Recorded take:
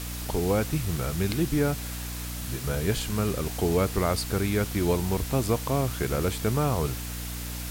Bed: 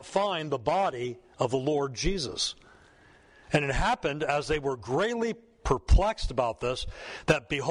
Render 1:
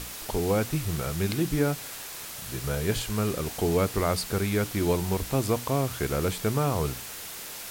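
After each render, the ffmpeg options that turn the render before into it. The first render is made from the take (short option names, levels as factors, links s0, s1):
-af "bandreject=f=60:t=h:w=6,bandreject=f=120:t=h:w=6,bandreject=f=180:t=h:w=6,bandreject=f=240:t=h:w=6,bandreject=f=300:t=h:w=6"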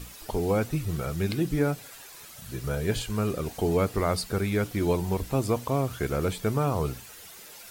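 -af "afftdn=nr=10:nf=-40"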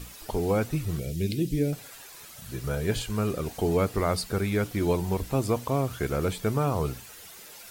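-filter_complex "[0:a]asettb=1/sr,asplit=3[s0][s1][s2];[s0]atrim=end=0.994[s3];[s1]atrim=start=0.99:end=1.73,asetpts=PTS-STARTPTS,afade=t=in:d=0.004:c=qsin,afade=t=out:st=0.736:d=0.004:c=qsin,asuperstop=centerf=1100:order=4:qfactor=0.55[s4];[s2]atrim=start=1.726[s5];[s3][s4]acrossfade=d=0.004:c1=hsin:c2=qsin[s6];[s6][s5]acrossfade=d=0.004:c1=qsin:c2=hsin"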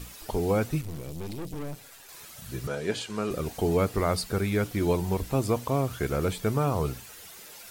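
-filter_complex "[0:a]asettb=1/sr,asplit=3[s0][s1][s2];[s0]atrim=end=0.814[s3];[s1]atrim=start=0.81:end=2.09,asetpts=PTS-STARTPTS,afade=t=in:d=0.004:c=qsin,afade=t=out:st=1.276:d=0.004:c=qsin,aeval=exprs='(tanh(50.1*val(0)+0.75)-tanh(0.75))/50.1':c=same[s4];[s2]atrim=start=2.086[s5];[s3][s4]acrossfade=d=0.004:c1=hsin:c2=qsin[s6];[s6][s5]acrossfade=d=0.004:c1=qsin:c2=hsin,asettb=1/sr,asplit=3[s7][s8][s9];[s7]atrim=end=2.674[s10];[s8]atrim=start=2.67:end=3.31,asetpts=PTS-STARTPTS,afade=t=in:d=0.004:c=qsin,afade=t=out:st=0.636:d=0.004:c=qsin,highpass=220,lowpass=7700[s11];[s9]atrim=start=3.306[s12];[s10][s11]acrossfade=d=0.004:c1=hsin:c2=qsin[s13];[s13][s12]acrossfade=d=0.004:c1=qsin:c2=hsin"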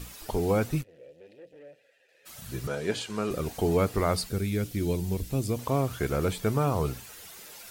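-filter_complex "[0:a]asplit=3[s0][s1][s2];[s0]afade=t=out:st=0.82:d=0.02[s3];[s1]asplit=3[s4][s5][s6];[s4]bandpass=f=530:t=q:w=8,volume=1[s7];[s5]bandpass=f=1840:t=q:w=8,volume=0.501[s8];[s6]bandpass=f=2480:t=q:w=8,volume=0.355[s9];[s7][s8][s9]amix=inputs=3:normalize=0,afade=t=in:st=0.82:d=0.02,afade=t=out:st=2.25:d=0.02[s10];[s2]afade=t=in:st=2.25:d=0.02[s11];[s3][s10][s11]amix=inputs=3:normalize=0,asettb=1/sr,asplit=3[s12][s13][s14];[s12]atrim=end=4.294[s15];[s13]atrim=start=4.29:end=5.59,asetpts=PTS-STARTPTS,afade=t=in:d=0.004:c=qsin,afade=t=out:st=1.296:d=0.004:c=qsin,equalizer=f=1000:w=0.69:g=-13[s16];[s14]atrim=start=5.586[s17];[s15][s16]acrossfade=d=0.004:c1=hsin:c2=qsin[s18];[s18][s17]acrossfade=d=0.004:c1=qsin:c2=hsin"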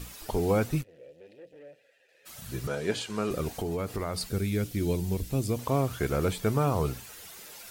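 -filter_complex "[0:a]asettb=1/sr,asplit=3[s0][s1][s2];[s0]atrim=end=3.494[s3];[s1]atrim=start=3.49:end=4.21,asetpts=PTS-STARTPTS,afade=t=in:d=0.004:c=qsin,afade=t=out:st=0.716:d=0.004:c=qsin,acompressor=threshold=0.0398:ratio=6:attack=3.2:release=140:knee=1:detection=peak[s4];[s2]atrim=start=4.206[s5];[s3][s4]acrossfade=d=0.004:c1=hsin:c2=qsin[s6];[s6][s5]acrossfade=d=0.004:c1=qsin:c2=hsin"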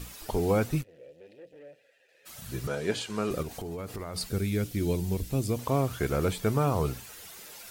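-filter_complex "[0:a]asettb=1/sr,asplit=3[s0][s1][s2];[s0]atrim=end=3.424[s3];[s1]atrim=start=3.42:end=4.16,asetpts=PTS-STARTPTS,afade=t=in:d=0.004:c=qsin,afade=t=out:st=0.736:d=0.004:c=qsin,acompressor=threshold=0.0224:ratio=6:attack=3.2:release=140:knee=1:detection=peak[s4];[s2]atrim=start=4.156[s5];[s3][s4]acrossfade=d=0.004:c1=hsin:c2=qsin[s6];[s6][s5]acrossfade=d=0.004:c1=qsin:c2=hsin"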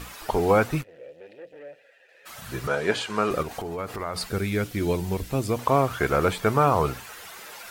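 -af "equalizer=f=1200:t=o:w=2.7:g=11.5"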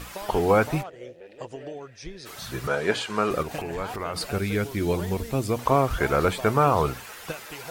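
-filter_complex "[1:a]volume=0.266[s0];[0:a][s0]amix=inputs=2:normalize=0"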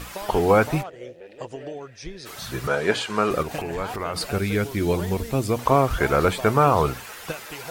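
-af "volume=1.33"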